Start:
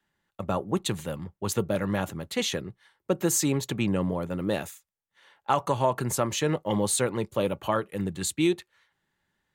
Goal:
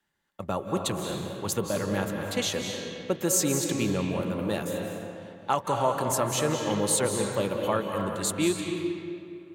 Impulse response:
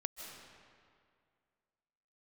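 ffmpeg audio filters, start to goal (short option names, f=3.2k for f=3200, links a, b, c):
-filter_complex "[0:a]bass=f=250:g=-2,treble=f=4k:g=3[a];[1:a]atrim=start_sample=2205,asetrate=37485,aresample=44100[b];[a][b]afir=irnorm=-1:irlink=0"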